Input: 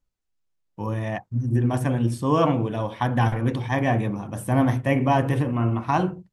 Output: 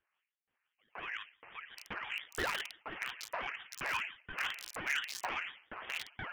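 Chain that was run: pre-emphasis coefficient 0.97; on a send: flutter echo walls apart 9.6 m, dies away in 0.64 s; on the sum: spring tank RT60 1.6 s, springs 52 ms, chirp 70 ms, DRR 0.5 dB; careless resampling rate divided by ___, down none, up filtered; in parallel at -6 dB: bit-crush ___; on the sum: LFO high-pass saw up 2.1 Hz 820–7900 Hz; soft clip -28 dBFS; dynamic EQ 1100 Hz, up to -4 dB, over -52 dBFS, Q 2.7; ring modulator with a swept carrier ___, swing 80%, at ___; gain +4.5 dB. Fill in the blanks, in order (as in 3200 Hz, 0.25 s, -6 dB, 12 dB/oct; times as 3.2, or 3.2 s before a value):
8×, 5-bit, 430 Hz, 5.8 Hz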